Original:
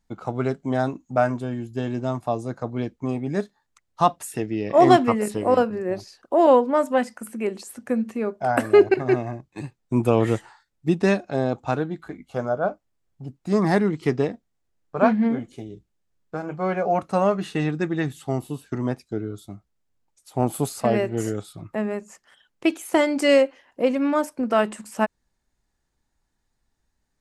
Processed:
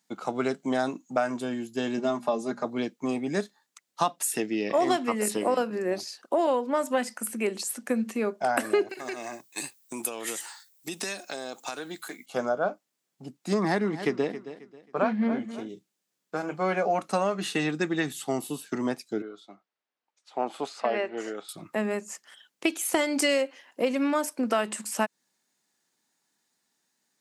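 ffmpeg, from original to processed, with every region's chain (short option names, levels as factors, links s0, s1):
-filter_complex "[0:a]asettb=1/sr,asplit=3[s0][s1][s2];[s0]atrim=end=1.974[s3];[s1]atrim=start=1.97:end=2.65,asetpts=PTS-STARTPTS,afade=t=in:d=0.004:c=qsin,afade=t=out:st=0.676:d=0.004:c=qsin,lowpass=f=3700:p=1,bandreject=f=60:t=h:w=6,bandreject=f=120:t=h:w=6,bandreject=f=180:t=h:w=6,bandreject=f=240:t=h:w=6,bandreject=f=300:t=h:w=6,aecho=1:1:4.9:0.83,atrim=end_sample=29988[s4];[s2]atrim=start=2.646[s5];[s3][s4]acrossfade=d=0.004:c1=hsin:c2=qsin[s6];[s6][s5]acrossfade=d=0.004:c1=qsin:c2=hsin,asettb=1/sr,asplit=3[s7][s8][s9];[s7]atrim=end=8.894[s10];[s8]atrim=start=8.89:end=12.26,asetpts=PTS-STARTPTS,afade=t=in:d=0.004:c=qsin,afade=t=out:st=3.366:d=0.004:c=qsin,aemphasis=mode=production:type=riaa,acompressor=threshold=0.0316:ratio=10:attack=3.2:release=140:knee=1:detection=peak[s11];[s9]atrim=start=12.256[s12];[s10][s11]acrossfade=d=0.004:c1=hsin:c2=qsin[s13];[s13][s12]acrossfade=d=0.004:c1=qsin:c2=hsin,asettb=1/sr,asplit=3[s14][s15][s16];[s14]atrim=end=13.544[s17];[s15]atrim=start=13.54:end=15.69,asetpts=PTS-STARTPTS,afade=t=in:d=0.004:c=qsin,afade=t=out:st=2.146:d=0.004:c=qsin,lowpass=f=3200:p=1,aecho=1:1:269|538|807:0.15|0.0464|0.0144,atrim=end_sample=94815[s18];[s16]atrim=start=15.686[s19];[s17][s18]acrossfade=d=0.004:c1=hsin:c2=qsin[s20];[s20][s19]acrossfade=d=0.004:c1=qsin:c2=hsin,asettb=1/sr,asplit=3[s21][s22][s23];[s21]atrim=end=19.224[s24];[s22]atrim=start=19.22:end=21.49,asetpts=PTS-STARTPTS,afade=t=in:d=0.004:c=qsin,afade=t=out:st=2.266:d=0.004:c=qsin,highpass=670,lowpass=4800,aemphasis=mode=reproduction:type=riaa[s25];[s23]atrim=start=21.486[s26];[s24][s25]acrossfade=d=0.004:c1=hsin:c2=qsin[s27];[s27][s26]acrossfade=d=0.004:c1=qsin:c2=hsin,highpass=f=180:w=0.5412,highpass=f=180:w=1.3066,highshelf=f=2100:g=10.5,acompressor=threshold=0.1:ratio=5,volume=0.841"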